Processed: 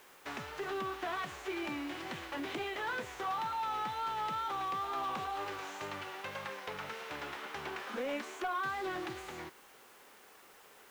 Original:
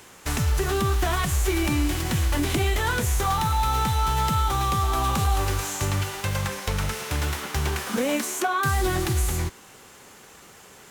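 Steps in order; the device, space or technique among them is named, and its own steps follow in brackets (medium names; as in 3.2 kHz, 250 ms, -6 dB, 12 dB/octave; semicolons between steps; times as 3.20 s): tape answering machine (band-pass 350–3100 Hz; saturation -20.5 dBFS, distortion -19 dB; wow and flutter; white noise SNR 24 dB); trim -8.5 dB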